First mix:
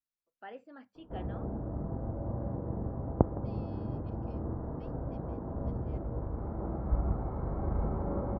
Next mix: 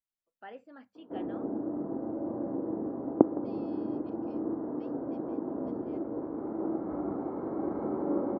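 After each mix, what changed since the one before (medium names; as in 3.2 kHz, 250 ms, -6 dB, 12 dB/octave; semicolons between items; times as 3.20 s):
background: add resonant high-pass 300 Hz, resonance Q 3.6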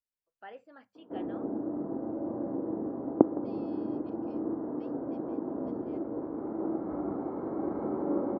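first voice: add peaking EQ 250 Hz -7.5 dB 0.64 oct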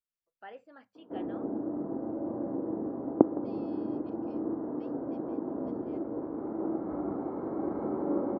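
no change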